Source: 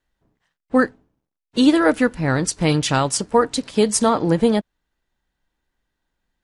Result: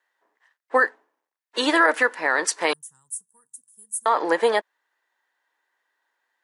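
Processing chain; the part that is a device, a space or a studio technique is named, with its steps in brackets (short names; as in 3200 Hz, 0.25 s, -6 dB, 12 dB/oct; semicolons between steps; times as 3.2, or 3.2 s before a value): 2.73–4.06 inverse Chebyshev band-stop 300–4700 Hz, stop band 50 dB; laptop speaker (HPF 410 Hz 24 dB/oct; bell 1000 Hz +8 dB 0.6 oct; bell 1800 Hz +10.5 dB 0.46 oct; limiter -9 dBFS, peak gain reduction 9 dB)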